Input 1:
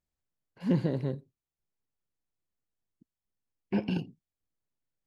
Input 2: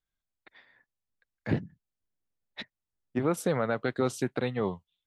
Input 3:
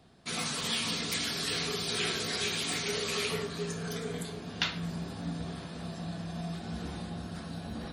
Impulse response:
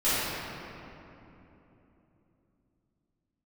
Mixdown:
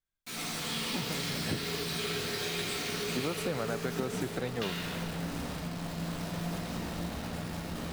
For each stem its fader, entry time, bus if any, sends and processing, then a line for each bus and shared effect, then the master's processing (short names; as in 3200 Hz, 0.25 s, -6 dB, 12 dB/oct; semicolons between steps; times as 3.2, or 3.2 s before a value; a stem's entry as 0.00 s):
-10.0 dB, 0.25 s, no send, sample-and-hold 40×
-3.0 dB, 0.00 s, no send, dry
-11.0 dB, 0.00 s, send -6 dB, bit-crush 6-bit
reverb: on, RT60 3.2 s, pre-delay 3 ms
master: compressor 4:1, threshold -29 dBFS, peak gain reduction 6 dB